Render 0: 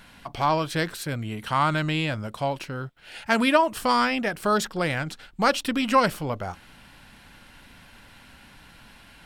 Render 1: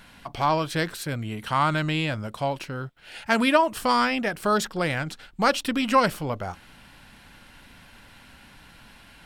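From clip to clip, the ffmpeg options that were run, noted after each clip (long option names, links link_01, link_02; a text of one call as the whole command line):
ffmpeg -i in.wav -af anull out.wav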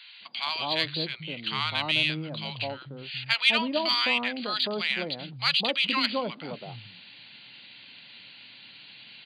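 ffmpeg -i in.wav -filter_complex "[0:a]acrossover=split=160|950[link_01][link_02][link_03];[link_02]adelay=210[link_04];[link_01]adelay=450[link_05];[link_05][link_04][link_03]amix=inputs=3:normalize=0,afftfilt=real='re*between(b*sr/4096,100,4800)':imag='im*between(b*sr/4096,100,4800)':win_size=4096:overlap=0.75,aexciter=amount=4.7:drive=6.8:freq=2200,volume=-6.5dB" out.wav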